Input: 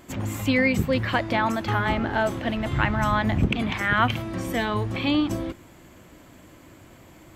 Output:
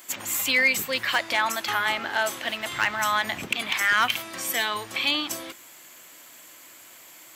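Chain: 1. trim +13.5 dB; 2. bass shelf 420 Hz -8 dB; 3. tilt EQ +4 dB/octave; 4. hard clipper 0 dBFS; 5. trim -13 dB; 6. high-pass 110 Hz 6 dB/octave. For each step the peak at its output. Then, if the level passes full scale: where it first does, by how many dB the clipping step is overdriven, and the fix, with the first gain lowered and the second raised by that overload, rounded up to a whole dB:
+6.5 dBFS, +5.5 dBFS, +10.0 dBFS, 0.0 dBFS, -13.0 dBFS, -12.0 dBFS; step 1, 10.0 dB; step 1 +3.5 dB, step 5 -3 dB

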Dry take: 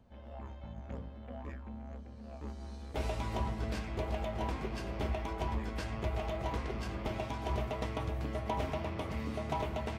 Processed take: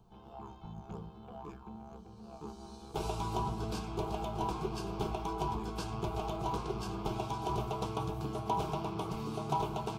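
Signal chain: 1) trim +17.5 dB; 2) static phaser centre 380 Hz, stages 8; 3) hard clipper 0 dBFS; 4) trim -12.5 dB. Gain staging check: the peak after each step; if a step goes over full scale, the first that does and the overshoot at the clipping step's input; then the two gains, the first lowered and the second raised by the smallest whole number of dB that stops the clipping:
-6.0 dBFS, -6.0 dBFS, -6.0 dBFS, -18.5 dBFS; nothing clips

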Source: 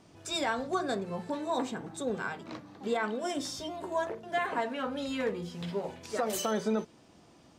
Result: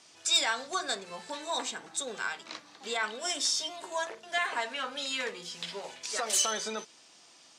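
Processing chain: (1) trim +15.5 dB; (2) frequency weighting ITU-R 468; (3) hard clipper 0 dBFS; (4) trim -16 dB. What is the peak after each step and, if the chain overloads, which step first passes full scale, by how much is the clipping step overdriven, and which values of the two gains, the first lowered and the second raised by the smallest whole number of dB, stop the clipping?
-3.0 dBFS, +4.0 dBFS, 0.0 dBFS, -16.0 dBFS; step 2, 4.0 dB; step 1 +11.5 dB, step 4 -12 dB

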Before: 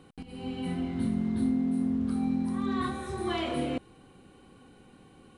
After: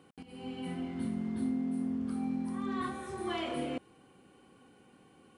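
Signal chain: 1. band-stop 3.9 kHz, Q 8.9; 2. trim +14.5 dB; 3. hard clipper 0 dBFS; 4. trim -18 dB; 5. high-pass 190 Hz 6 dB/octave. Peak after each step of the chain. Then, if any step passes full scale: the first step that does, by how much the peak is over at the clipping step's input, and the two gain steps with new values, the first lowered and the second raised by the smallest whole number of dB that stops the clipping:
-18.5 dBFS, -4.0 dBFS, -4.0 dBFS, -22.0 dBFS, -24.0 dBFS; nothing clips

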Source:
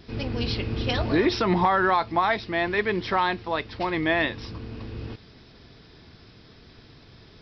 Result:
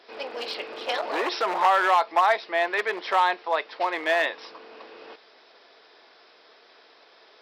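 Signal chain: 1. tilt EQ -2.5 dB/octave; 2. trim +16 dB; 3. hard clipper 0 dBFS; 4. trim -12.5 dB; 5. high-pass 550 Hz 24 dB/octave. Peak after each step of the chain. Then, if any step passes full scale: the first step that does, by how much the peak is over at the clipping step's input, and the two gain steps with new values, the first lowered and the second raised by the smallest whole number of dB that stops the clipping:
-7.5 dBFS, +8.5 dBFS, 0.0 dBFS, -12.5 dBFS, -8.5 dBFS; step 2, 8.5 dB; step 2 +7 dB, step 4 -3.5 dB

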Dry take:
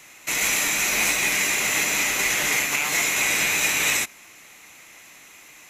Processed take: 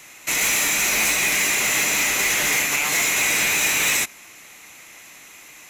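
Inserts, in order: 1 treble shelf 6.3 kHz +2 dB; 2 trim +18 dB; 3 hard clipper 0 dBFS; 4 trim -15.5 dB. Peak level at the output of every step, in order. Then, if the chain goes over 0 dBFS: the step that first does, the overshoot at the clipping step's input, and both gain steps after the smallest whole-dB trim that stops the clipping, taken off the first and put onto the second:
-9.5 dBFS, +8.5 dBFS, 0.0 dBFS, -15.5 dBFS; step 2, 8.5 dB; step 2 +9 dB, step 4 -6.5 dB

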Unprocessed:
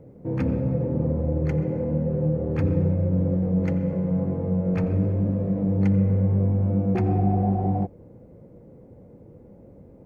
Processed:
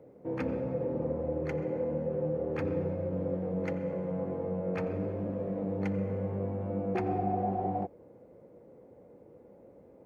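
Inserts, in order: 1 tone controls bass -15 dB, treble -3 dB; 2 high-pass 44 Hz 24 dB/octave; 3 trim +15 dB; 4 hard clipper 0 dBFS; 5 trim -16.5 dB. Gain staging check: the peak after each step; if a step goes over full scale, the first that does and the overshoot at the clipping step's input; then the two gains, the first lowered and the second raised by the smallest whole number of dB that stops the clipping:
-17.5 dBFS, -18.0 dBFS, -3.0 dBFS, -3.0 dBFS, -19.5 dBFS; nothing clips

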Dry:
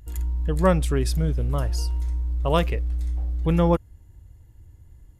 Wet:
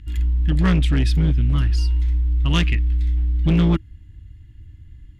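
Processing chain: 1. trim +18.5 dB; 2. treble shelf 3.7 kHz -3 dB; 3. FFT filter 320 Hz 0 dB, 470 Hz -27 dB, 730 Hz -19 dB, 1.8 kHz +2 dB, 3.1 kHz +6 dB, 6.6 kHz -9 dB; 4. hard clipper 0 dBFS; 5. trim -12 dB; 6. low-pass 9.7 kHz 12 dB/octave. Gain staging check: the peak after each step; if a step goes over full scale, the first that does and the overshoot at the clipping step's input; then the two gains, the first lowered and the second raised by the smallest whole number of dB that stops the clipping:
+12.5 dBFS, +12.0 dBFS, +9.0 dBFS, 0.0 dBFS, -12.0 dBFS, -11.5 dBFS; step 1, 9.0 dB; step 1 +9.5 dB, step 5 -3 dB

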